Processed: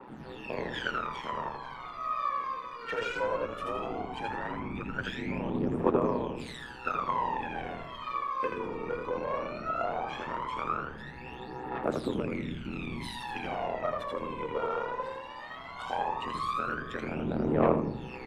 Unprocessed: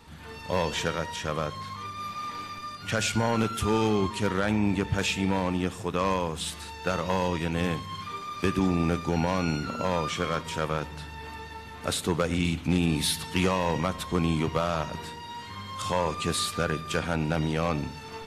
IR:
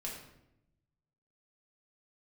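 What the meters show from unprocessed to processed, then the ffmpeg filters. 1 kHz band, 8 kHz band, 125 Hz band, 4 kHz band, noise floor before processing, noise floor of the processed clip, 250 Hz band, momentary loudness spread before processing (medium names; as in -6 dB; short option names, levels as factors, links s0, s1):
-1.5 dB, under -20 dB, -11.0 dB, -11.5 dB, -42 dBFS, -44 dBFS, -7.0 dB, 11 LU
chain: -filter_complex "[0:a]aeval=exprs='val(0)*sin(2*PI*62*n/s)':c=same,acompressor=threshold=0.0316:ratio=4,acrossover=split=230 3100:gain=0.0631 1 0.112[s0][s1][s2];[s0][s1][s2]amix=inputs=3:normalize=0,asplit=5[s3][s4][s5][s6][s7];[s4]adelay=81,afreqshift=-69,volume=0.708[s8];[s5]adelay=162,afreqshift=-138,volume=0.211[s9];[s6]adelay=243,afreqshift=-207,volume=0.0638[s10];[s7]adelay=324,afreqshift=-276,volume=0.0191[s11];[s3][s8][s9][s10][s11]amix=inputs=5:normalize=0,asplit=2[s12][s13];[1:a]atrim=start_sample=2205,adelay=90[s14];[s13][s14]afir=irnorm=-1:irlink=0,volume=0.282[s15];[s12][s15]amix=inputs=2:normalize=0,aphaser=in_gain=1:out_gain=1:delay=2.2:decay=0.78:speed=0.17:type=triangular,adynamicequalizer=threshold=0.00501:dfrequency=1900:dqfactor=0.7:tfrequency=1900:tqfactor=0.7:attack=5:release=100:ratio=0.375:range=3.5:mode=cutabove:tftype=highshelf"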